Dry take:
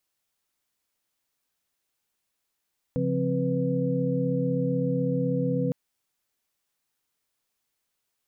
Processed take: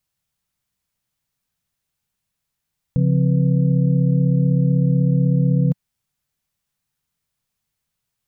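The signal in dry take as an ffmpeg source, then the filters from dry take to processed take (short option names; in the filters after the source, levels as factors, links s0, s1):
-f lavfi -i "aevalsrc='0.0376*(sin(2*PI*138.59*t)+sin(2*PI*174.61*t)+sin(2*PI*261.63*t)+sin(2*PI*493.88*t))':d=2.76:s=44100"
-af "lowshelf=f=220:t=q:w=1.5:g=10.5"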